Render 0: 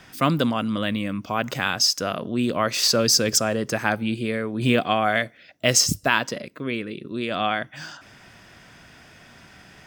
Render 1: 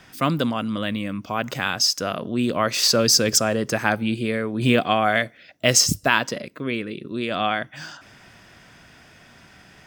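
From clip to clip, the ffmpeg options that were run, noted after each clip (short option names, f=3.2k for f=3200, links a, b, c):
-af "dynaudnorm=f=370:g=13:m=11.5dB,volume=-1dB"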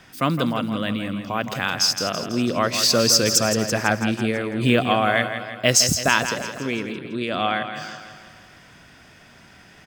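-af "aecho=1:1:165|330|495|660|825|990:0.335|0.184|0.101|0.0557|0.0307|0.0169"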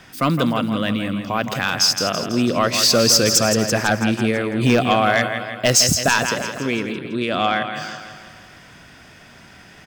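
-af "aeval=exprs='0.841*sin(PI/2*2*val(0)/0.841)':c=same,volume=-6dB"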